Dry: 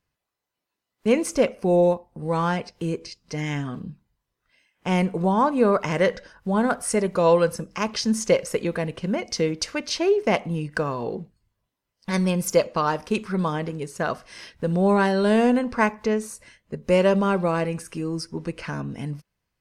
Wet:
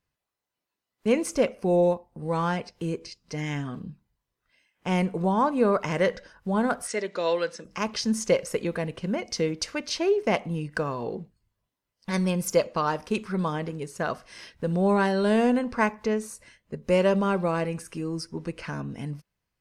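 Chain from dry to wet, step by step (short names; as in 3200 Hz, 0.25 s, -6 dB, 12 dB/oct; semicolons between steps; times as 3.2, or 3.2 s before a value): 6.87–7.65 speaker cabinet 380–7000 Hz, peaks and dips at 510 Hz -3 dB, 780 Hz -7 dB, 1100 Hz -7 dB, 1900 Hz +5 dB, 3700 Hz +7 dB; gain -3 dB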